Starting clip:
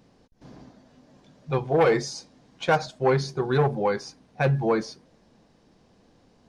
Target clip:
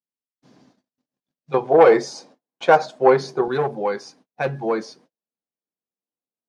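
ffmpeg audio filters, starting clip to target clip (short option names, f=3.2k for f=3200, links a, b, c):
-af "highpass=210,agate=range=-40dB:threshold=-52dB:ratio=16:detection=peak,asetnsamples=n=441:p=0,asendcmd='1.54 equalizer g 10;3.48 equalizer g 2.5',equalizer=f=640:w=0.42:g=-6,volume=-1dB"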